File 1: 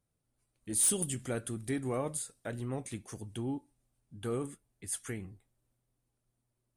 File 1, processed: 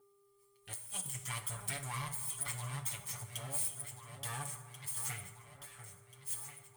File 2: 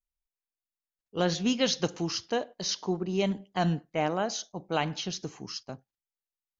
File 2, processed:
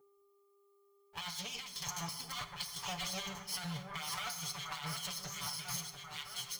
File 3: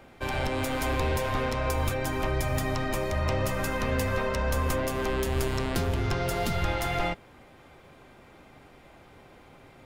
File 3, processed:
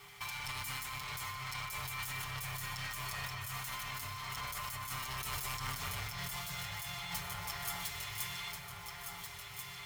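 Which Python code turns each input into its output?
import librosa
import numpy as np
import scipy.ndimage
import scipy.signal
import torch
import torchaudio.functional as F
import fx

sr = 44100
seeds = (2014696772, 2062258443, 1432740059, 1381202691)

p1 = fx.lower_of_two(x, sr, delay_ms=0.92)
p2 = np.clip(10.0 ** (32.5 / 20.0) * p1, -1.0, 1.0) / 10.0 ** (32.5 / 20.0)
p3 = p1 + F.gain(torch.from_numpy(p2), -11.0).numpy()
p4 = fx.tone_stack(p3, sr, knobs='10-0-10')
p5 = p4 + fx.echo_alternate(p4, sr, ms=693, hz=1600.0, feedback_pct=70, wet_db=-8.0, dry=0)
p6 = fx.dmg_buzz(p5, sr, base_hz=400.0, harmonics=3, level_db=-72.0, tilt_db=-8, odd_only=False)
p7 = scipy.signal.sosfilt(scipy.signal.butter(2, 74.0, 'highpass', fs=sr, output='sos'), p6)
p8 = p7 + 0.9 * np.pad(p7, (int(6.9 * sr / 1000.0), 0))[:len(p7)]
p9 = fx.over_compress(p8, sr, threshold_db=-41.0, ratio=-1.0)
p10 = fx.high_shelf(p9, sr, hz=12000.0, db=10.0)
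p11 = fx.rev_plate(p10, sr, seeds[0], rt60_s=1.9, hf_ratio=0.45, predelay_ms=0, drr_db=9.0)
y = F.gain(torch.from_numpy(p11), -1.5).numpy()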